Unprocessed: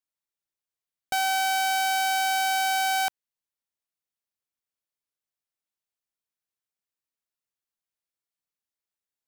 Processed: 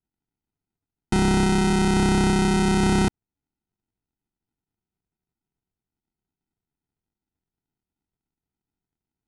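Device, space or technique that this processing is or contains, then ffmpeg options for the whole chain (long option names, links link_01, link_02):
crushed at another speed: -af "asetrate=88200,aresample=44100,acrusher=samples=39:mix=1:aa=0.000001,asetrate=22050,aresample=44100,volume=5.5dB"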